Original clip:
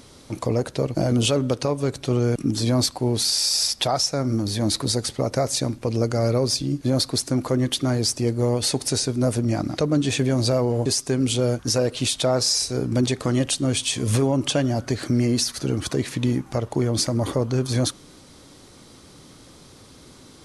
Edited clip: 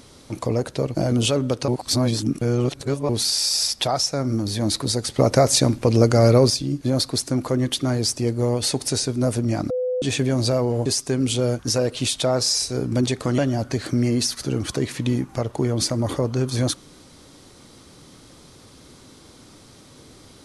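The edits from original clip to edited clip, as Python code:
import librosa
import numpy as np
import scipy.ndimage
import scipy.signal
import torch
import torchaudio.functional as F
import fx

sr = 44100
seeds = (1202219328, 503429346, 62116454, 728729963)

y = fx.edit(x, sr, fx.reverse_span(start_s=1.68, length_s=1.41),
    fx.clip_gain(start_s=5.16, length_s=1.34, db=6.5),
    fx.bleep(start_s=9.7, length_s=0.32, hz=504.0, db=-20.5),
    fx.cut(start_s=13.38, length_s=1.17), tone=tone)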